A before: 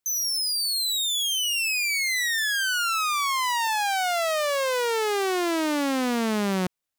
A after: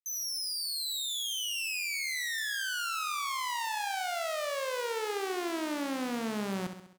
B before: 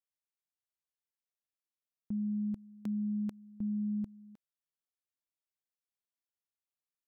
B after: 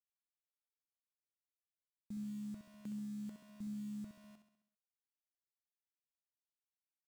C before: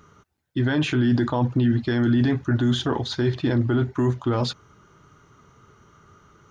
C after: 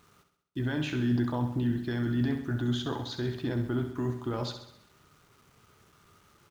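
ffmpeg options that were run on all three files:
-filter_complex "[0:a]tremolo=f=70:d=0.261,acrusher=bits=8:mix=0:aa=0.000001,asplit=2[a][b];[b]aecho=0:1:66|132|198|264|330|396:0.376|0.203|0.11|0.0592|0.032|0.0173[c];[a][c]amix=inputs=2:normalize=0,volume=-8.5dB"

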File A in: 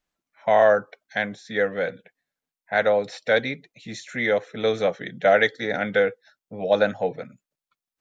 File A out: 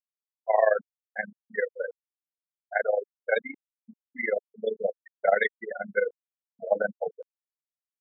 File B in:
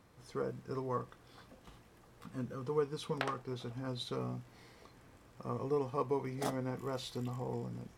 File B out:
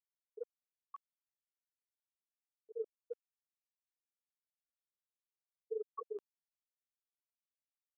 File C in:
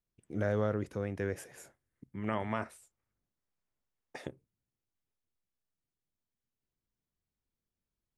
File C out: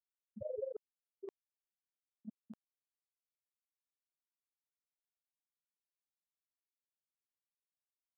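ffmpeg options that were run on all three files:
-af "afftfilt=real='re*gte(hypot(re,im),0.2)':imag='im*gte(hypot(re,im),0.2)':win_size=1024:overlap=0.75,areverse,acompressor=mode=upward:threshold=-32dB:ratio=2.5,areverse,highpass=f=420:p=1,tremolo=f=23:d=0.824"

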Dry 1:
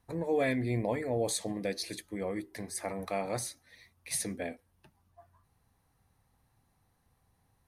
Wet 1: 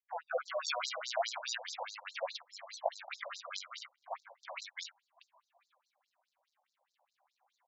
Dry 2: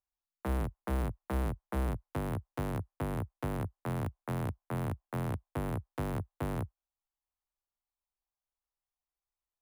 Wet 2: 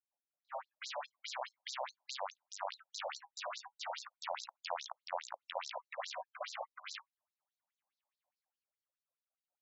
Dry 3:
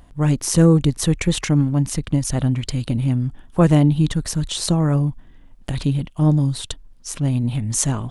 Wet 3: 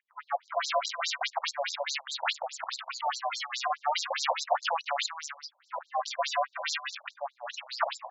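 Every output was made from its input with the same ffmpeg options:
-filter_complex "[0:a]acrusher=samples=29:mix=1:aa=0.000001:lfo=1:lforange=46.4:lforate=0.36,volume=17dB,asoftclip=hard,volume=-17dB,acrossover=split=1400[a][b];[b]adelay=370[c];[a][c]amix=inputs=2:normalize=0,alimiter=level_in=12dB:limit=-1dB:release=50:level=0:latency=1,afftfilt=real='re*between(b*sr/1024,710*pow(5500/710,0.5+0.5*sin(2*PI*4.8*pts/sr))/1.41,710*pow(5500/710,0.5+0.5*sin(2*PI*4.8*pts/sr))*1.41)':imag='im*between(b*sr/1024,710*pow(5500/710,0.5+0.5*sin(2*PI*4.8*pts/sr))/1.41,710*pow(5500/710,0.5+0.5*sin(2*PI*4.8*pts/sr))*1.41)':win_size=1024:overlap=0.75,volume=-4.5dB"

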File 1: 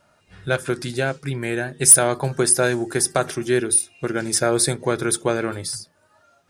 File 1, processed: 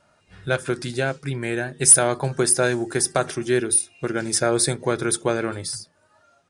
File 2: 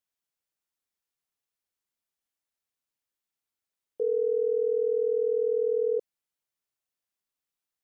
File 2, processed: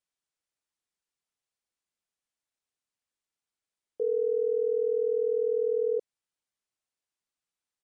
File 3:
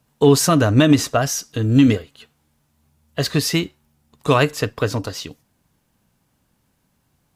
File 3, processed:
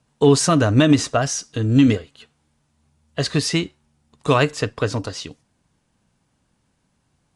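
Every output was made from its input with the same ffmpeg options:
-af "aresample=22050,aresample=44100,volume=-1dB"

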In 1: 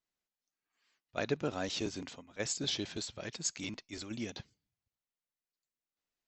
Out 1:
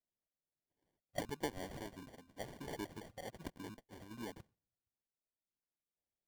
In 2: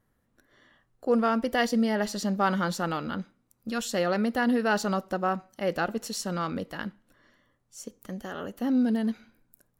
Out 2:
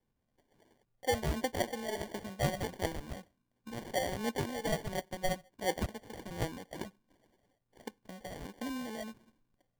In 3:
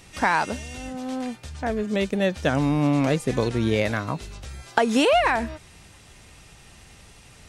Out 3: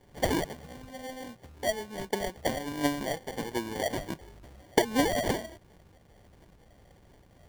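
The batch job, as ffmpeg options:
-filter_complex "[0:a]adynamicequalizer=threshold=0.0126:dfrequency=180:dqfactor=0.93:tfrequency=180:tqfactor=0.93:attack=5:release=100:ratio=0.375:range=3:mode=cutabove:tftype=bell,acrossover=split=270[a][b];[a]acompressor=threshold=-42dB:ratio=6[c];[b]aphaser=in_gain=1:out_gain=1:delay=2:decay=0.71:speed=1.4:type=triangular[d];[c][d]amix=inputs=2:normalize=0,adynamicsmooth=sensitivity=1:basefreq=4.1k,acrusher=samples=34:mix=1:aa=0.000001,volume=-8dB"

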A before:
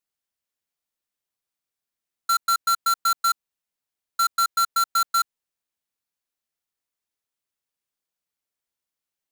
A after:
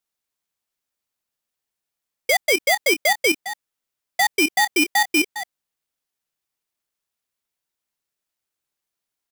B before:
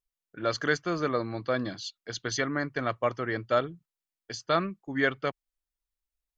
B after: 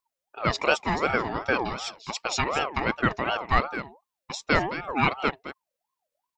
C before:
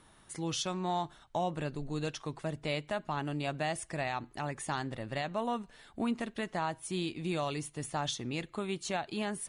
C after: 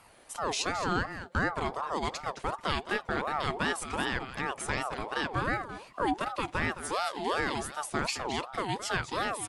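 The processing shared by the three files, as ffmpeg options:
-af "aecho=1:1:216:0.266,aeval=exprs='val(0)*sin(2*PI*790*n/s+790*0.35/2.7*sin(2*PI*2.7*n/s))':c=same,volume=6dB"

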